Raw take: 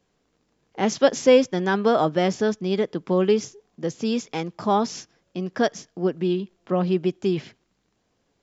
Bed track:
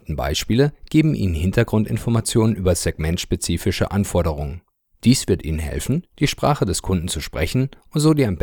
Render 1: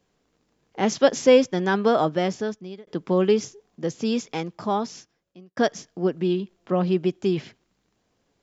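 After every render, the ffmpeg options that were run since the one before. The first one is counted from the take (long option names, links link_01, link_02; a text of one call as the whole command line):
ffmpeg -i in.wav -filter_complex "[0:a]asplit=3[link_01][link_02][link_03];[link_01]atrim=end=2.87,asetpts=PTS-STARTPTS,afade=type=out:start_time=1.71:duration=1.16:curve=qsin[link_04];[link_02]atrim=start=2.87:end=5.57,asetpts=PTS-STARTPTS,afade=type=in:duration=0.004:curve=hsin,afade=type=out:start_time=1.42:duration=1.28[link_05];[link_03]atrim=start=5.57,asetpts=PTS-STARTPTS,afade=type=in:duration=0.004:curve=hsin[link_06];[link_04][link_05][link_06]concat=n=3:v=0:a=1" out.wav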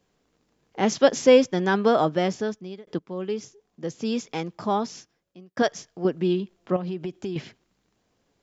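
ffmpeg -i in.wav -filter_complex "[0:a]asettb=1/sr,asplit=3[link_01][link_02][link_03];[link_01]atrim=end=5.624[link_04];[link_02]atrim=start=5.62:end=6.05,asetpts=PTS-STARTPTS,afade=type=in:duration=0.004:curve=qsin,afade=type=out:start_time=0.426:duration=0.004:curve=qsin,equalizer=frequency=240:width_type=o:width=1.1:gain=-8.5[link_05];[link_03]atrim=start=6.046[link_06];[link_04][link_05]acrossfade=duration=0.004:curve1=hsin:curve2=qsin[link_07];[link_07][link_06]acrossfade=duration=0.004:curve1=qsin:curve2=hsin,asettb=1/sr,asplit=3[link_08][link_09][link_10];[link_08]atrim=end=6.764[link_11];[link_09]atrim=start=6.76:end=7.36,asetpts=PTS-STARTPTS,afade=type=in:duration=0.004:curve=qsin,afade=type=out:start_time=0.596:duration=0.004:curve=qsin,acompressor=threshold=-27dB:ratio=6:attack=3.2:release=140:knee=1:detection=peak[link_12];[link_10]atrim=start=7.356[link_13];[link_11][link_12]acrossfade=duration=0.004:curve1=hsin:curve2=qsin[link_14];[link_14][link_13]acrossfade=duration=0.004:curve1=qsin:curve2=hsin,asplit=2[link_15][link_16];[link_15]atrim=end=2.99,asetpts=PTS-STARTPTS,afade=type=out:start_time=2.986:duration=0.004:curve=hsin:silence=0.16788[link_17];[link_16]atrim=start=2.99,asetpts=PTS-STARTPTS,afade=type=in:duration=1.61:silence=0.16788[link_18];[link_17][link_18]concat=n=2:v=0:a=1" out.wav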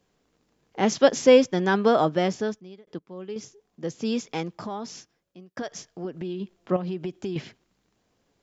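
ffmpeg -i in.wav -filter_complex "[0:a]asplit=3[link_01][link_02][link_03];[link_01]afade=type=out:start_time=4.55:duration=0.02[link_04];[link_02]acompressor=threshold=-30dB:ratio=4:attack=3.2:release=140:knee=1:detection=peak,afade=type=in:start_time=4.55:duration=0.02,afade=type=out:start_time=6.4:duration=0.02[link_05];[link_03]afade=type=in:start_time=6.4:duration=0.02[link_06];[link_04][link_05][link_06]amix=inputs=3:normalize=0,asplit=3[link_07][link_08][link_09];[link_07]atrim=end=2.602[link_10];[link_08]atrim=start=2.598:end=3.362,asetpts=PTS-STARTPTS,volume=-7dB[link_11];[link_09]atrim=start=3.358[link_12];[link_10][link_11]acrossfade=duration=0.004:curve1=hsin:curve2=hsin[link_13];[link_13][link_12]acrossfade=duration=0.004:curve1=hsin:curve2=hsin" out.wav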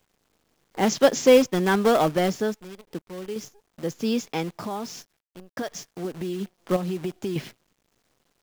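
ffmpeg -i in.wav -filter_complex "[0:a]asplit=2[link_01][link_02];[link_02]aeval=exprs='(mod(7.5*val(0)+1,2)-1)/7.5':channel_layout=same,volume=-11.5dB[link_03];[link_01][link_03]amix=inputs=2:normalize=0,acrusher=bits=8:dc=4:mix=0:aa=0.000001" out.wav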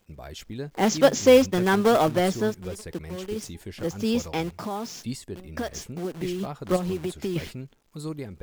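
ffmpeg -i in.wav -i bed.wav -filter_complex "[1:a]volume=-18.5dB[link_01];[0:a][link_01]amix=inputs=2:normalize=0" out.wav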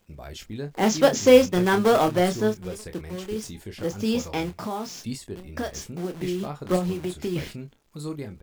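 ffmpeg -i in.wav -filter_complex "[0:a]asplit=2[link_01][link_02];[link_02]adelay=28,volume=-8dB[link_03];[link_01][link_03]amix=inputs=2:normalize=0" out.wav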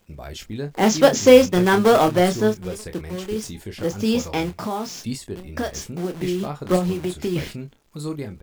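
ffmpeg -i in.wav -af "volume=4dB,alimiter=limit=-1dB:level=0:latency=1" out.wav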